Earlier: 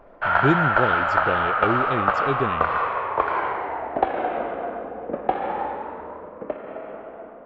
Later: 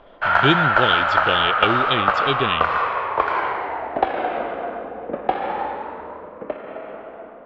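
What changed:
speech: add synth low-pass 3300 Hz, resonance Q 6.2; master: remove tape spacing loss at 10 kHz 21 dB

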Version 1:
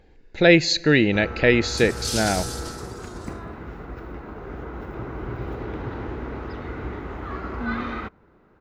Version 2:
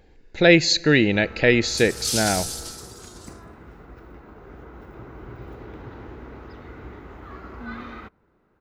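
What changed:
first sound -8.0 dB; master: add high shelf 6700 Hz +7.5 dB

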